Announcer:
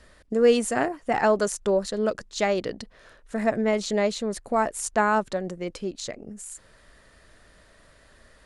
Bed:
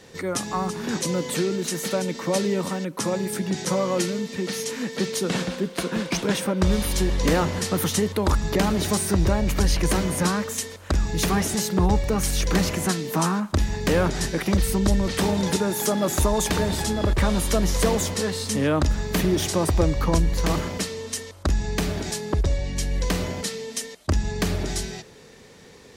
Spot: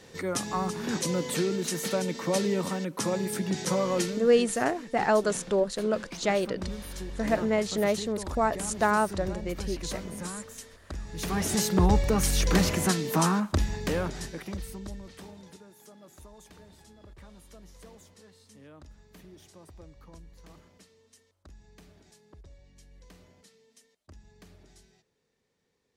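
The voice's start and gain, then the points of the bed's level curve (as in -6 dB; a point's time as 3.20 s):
3.85 s, -2.5 dB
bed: 3.99 s -3.5 dB
4.60 s -15.5 dB
11.07 s -15.5 dB
11.54 s -1.5 dB
13.38 s -1.5 dB
15.74 s -29.5 dB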